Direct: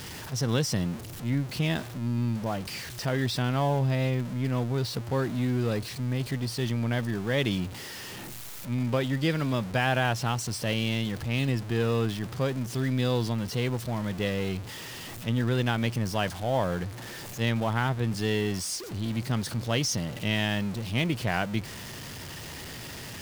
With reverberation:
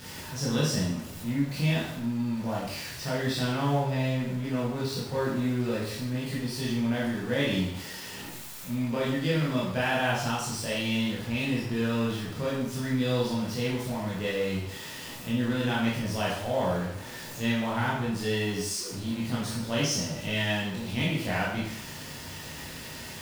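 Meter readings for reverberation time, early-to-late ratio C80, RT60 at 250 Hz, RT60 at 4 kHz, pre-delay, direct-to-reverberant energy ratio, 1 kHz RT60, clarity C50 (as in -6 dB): 0.70 s, 5.5 dB, 0.65 s, 0.70 s, 15 ms, -7.0 dB, 0.70 s, 1.5 dB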